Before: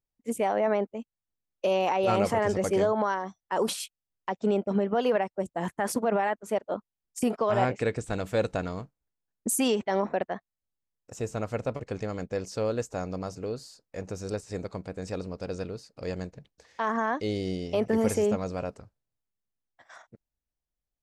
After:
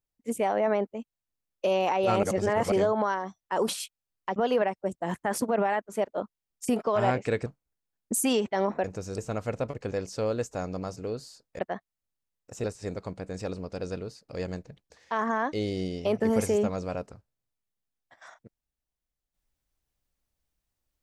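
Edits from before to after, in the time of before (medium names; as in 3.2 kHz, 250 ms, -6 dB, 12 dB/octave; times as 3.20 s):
2.23–2.72 s: reverse
4.36–4.90 s: delete
8.00–8.81 s: delete
10.19–11.24 s: swap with 13.98–14.32 s
11.98–12.31 s: delete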